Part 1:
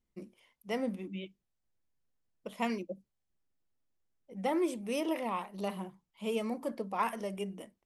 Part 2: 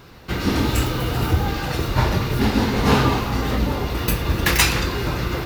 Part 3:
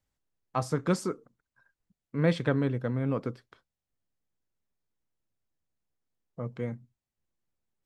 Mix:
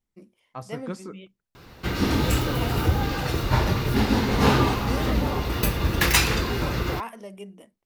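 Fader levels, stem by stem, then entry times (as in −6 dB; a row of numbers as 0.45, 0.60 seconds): −2.5, −2.5, −7.5 decibels; 0.00, 1.55, 0.00 seconds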